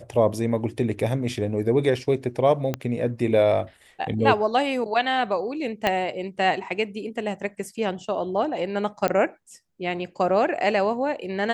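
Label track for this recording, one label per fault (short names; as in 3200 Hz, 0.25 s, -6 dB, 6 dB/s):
2.740000	2.740000	pop -12 dBFS
5.870000	5.870000	pop -8 dBFS
9.080000	9.080000	pop -10 dBFS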